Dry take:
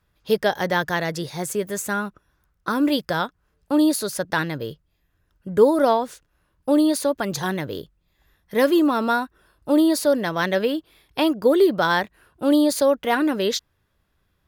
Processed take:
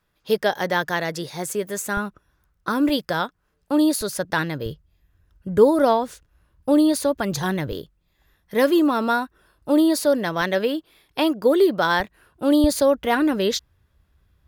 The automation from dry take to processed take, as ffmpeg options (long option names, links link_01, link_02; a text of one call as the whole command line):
ffmpeg -i in.wav -af "asetnsamples=nb_out_samples=441:pad=0,asendcmd='1.97 equalizer g 2;2.89 equalizer g -5;4.01 equalizer g 2;4.66 equalizer g 10.5;7.72 equalizer g 0;10.41 equalizer g -7;12 equalizer g 0.5;12.64 equalizer g 12',equalizer=frequency=60:width_type=o:width=2:gain=-10" out.wav